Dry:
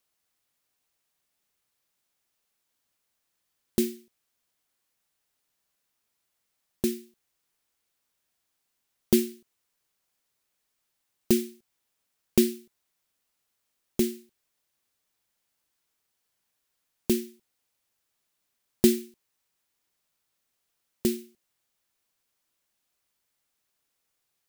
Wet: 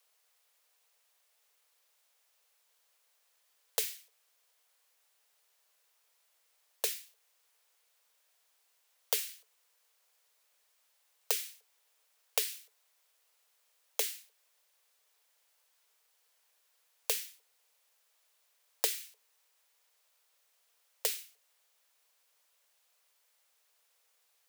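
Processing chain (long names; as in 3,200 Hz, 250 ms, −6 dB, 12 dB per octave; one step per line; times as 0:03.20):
Chebyshev high-pass filter 430 Hz, order 10
downward compressor 6 to 1, threshold −34 dBFS, peak gain reduction 10 dB
level +6.5 dB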